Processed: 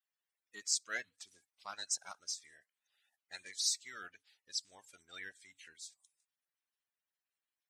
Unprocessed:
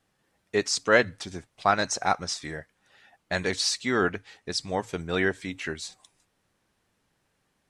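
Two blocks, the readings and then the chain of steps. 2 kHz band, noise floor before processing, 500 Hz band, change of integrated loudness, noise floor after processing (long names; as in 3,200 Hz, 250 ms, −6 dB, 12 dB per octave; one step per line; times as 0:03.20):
−18.0 dB, −74 dBFS, −32.0 dB, −12.0 dB, below −85 dBFS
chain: spectral magnitudes quantised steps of 30 dB
first-order pre-emphasis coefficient 0.97
expander for the loud parts 1.5 to 1, over −44 dBFS
level −2.5 dB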